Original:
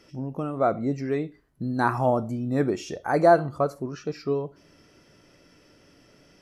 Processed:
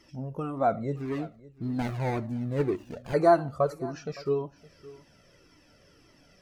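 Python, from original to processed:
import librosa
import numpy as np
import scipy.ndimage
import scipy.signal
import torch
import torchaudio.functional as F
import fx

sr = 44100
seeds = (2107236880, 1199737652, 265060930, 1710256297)

y = fx.median_filter(x, sr, points=41, at=(0.96, 3.14))
y = y + 10.0 ** (-20.0 / 20.0) * np.pad(y, (int(564 * sr / 1000.0), 0))[:len(y)]
y = fx.comb_cascade(y, sr, direction='falling', hz=1.8)
y = F.gain(torch.from_numpy(y), 2.0).numpy()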